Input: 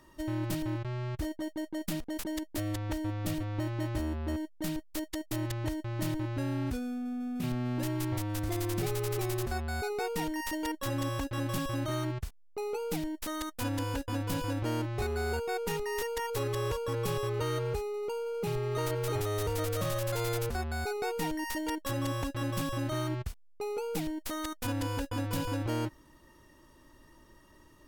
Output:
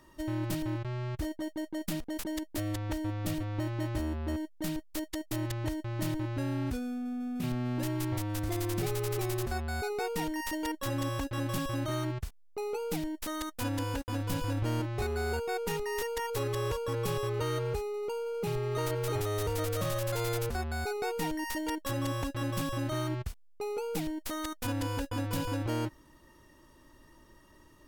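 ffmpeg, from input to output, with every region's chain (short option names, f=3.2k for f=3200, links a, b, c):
-filter_complex "[0:a]asettb=1/sr,asplit=3[a][b][c];[a]atrim=end=13.964[d];[b]atrim=start=13.96:end=14.8,asetpts=PTS-STARTPTS,afade=t=in:d=0.004:c=qsin,afade=t=out:st=0.836:d=0.004:c=qsin,asubboost=boost=4.5:cutoff=210,aeval=exprs='sgn(val(0))*max(abs(val(0))-0.00335,0)':c=same[e];[c]atrim=start=14.796[f];[d][e]acrossfade=d=0.004:c1=hsin:c2=qsin[g];[g][f]acrossfade=d=0.004:c1=qsin:c2=hsin"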